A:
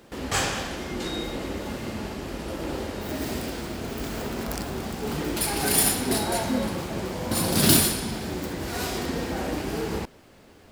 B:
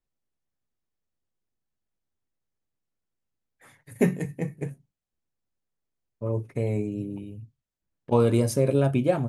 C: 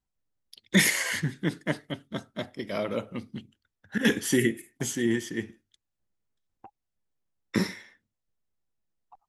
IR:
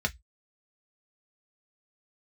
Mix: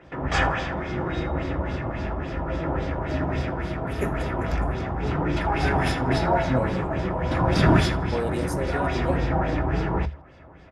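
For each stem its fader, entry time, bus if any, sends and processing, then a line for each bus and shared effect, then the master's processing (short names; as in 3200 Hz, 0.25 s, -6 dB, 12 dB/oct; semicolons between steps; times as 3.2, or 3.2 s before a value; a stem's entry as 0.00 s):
-1.5 dB, 0.00 s, send -8.5 dB, echo send -22 dB, octaver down 1 oct, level -1 dB; notch 4200 Hz, Q 5.3; LFO low-pass sine 3.6 Hz 950–4500 Hz
-5.5 dB, 0.00 s, no send, no echo send, HPF 310 Hz
-17.5 dB, 0.00 s, no send, no echo send, LPF 1200 Hz 12 dB/oct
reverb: on, RT60 0.10 s, pre-delay 3 ms
echo: feedback echo 81 ms, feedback 26%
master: dry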